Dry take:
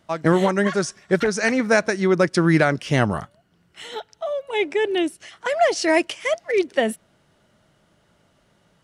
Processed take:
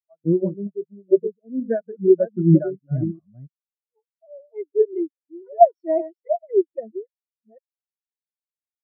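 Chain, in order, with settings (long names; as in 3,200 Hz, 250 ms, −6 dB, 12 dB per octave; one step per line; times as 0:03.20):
delay that plays each chunk backwards 399 ms, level −3.5 dB
0:00.52–0:01.64: Butterworth low-pass 670 Hz
every bin expanded away from the loudest bin 4 to 1
level +2 dB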